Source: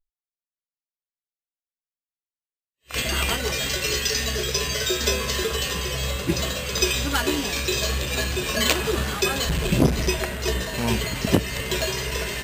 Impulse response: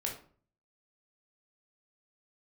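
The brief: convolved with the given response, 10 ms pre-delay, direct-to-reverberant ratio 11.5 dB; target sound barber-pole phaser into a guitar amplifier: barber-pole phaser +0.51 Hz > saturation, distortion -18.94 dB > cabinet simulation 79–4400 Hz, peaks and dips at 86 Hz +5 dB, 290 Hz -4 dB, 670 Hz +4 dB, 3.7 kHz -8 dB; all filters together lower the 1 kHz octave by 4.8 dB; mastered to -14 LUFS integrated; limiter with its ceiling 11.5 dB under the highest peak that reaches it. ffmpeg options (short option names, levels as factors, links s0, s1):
-filter_complex "[0:a]equalizer=f=1000:t=o:g=-7.5,alimiter=limit=0.178:level=0:latency=1,asplit=2[s0][s1];[1:a]atrim=start_sample=2205,adelay=10[s2];[s1][s2]afir=irnorm=-1:irlink=0,volume=0.211[s3];[s0][s3]amix=inputs=2:normalize=0,asplit=2[s4][s5];[s5]afreqshift=0.51[s6];[s4][s6]amix=inputs=2:normalize=1,asoftclip=threshold=0.0841,highpass=79,equalizer=f=86:t=q:w=4:g=5,equalizer=f=290:t=q:w=4:g=-4,equalizer=f=670:t=q:w=4:g=4,equalizer=f=3700:t=q:w=4:g=-8,lowpass=f=4400:w=0.5412,lowpass=f=4400:w=1.3066,volume=8.41"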